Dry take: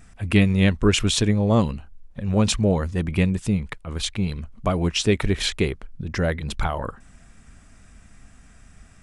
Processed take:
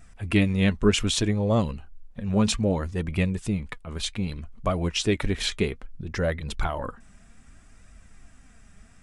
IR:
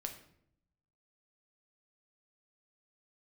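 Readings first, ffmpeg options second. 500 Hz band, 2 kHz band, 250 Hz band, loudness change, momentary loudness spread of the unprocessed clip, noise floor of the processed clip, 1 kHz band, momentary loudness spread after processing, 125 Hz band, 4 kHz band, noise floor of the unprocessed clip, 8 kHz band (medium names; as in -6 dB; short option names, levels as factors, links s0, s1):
-2.5 dB, -3.0 dB, -3.5 dB, -3.5 dB, 11 LU, -53 dBFS, -3.0 dB, 12 LU, -4.5 dB, -3.0 dB, -50 dBFS, -3.5 dB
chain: -af "flanger=delay=1.4:depth=3.7:regen=63:speed=0.63:shape=triangular,volume=1.12"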